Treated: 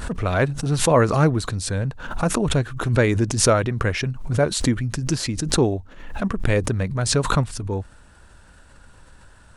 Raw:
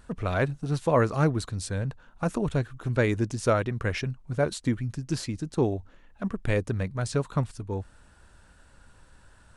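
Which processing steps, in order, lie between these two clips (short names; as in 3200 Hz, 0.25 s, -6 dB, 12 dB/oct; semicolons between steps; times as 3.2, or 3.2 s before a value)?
backwards sustainer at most 69 dB/s; gain +5.5 dB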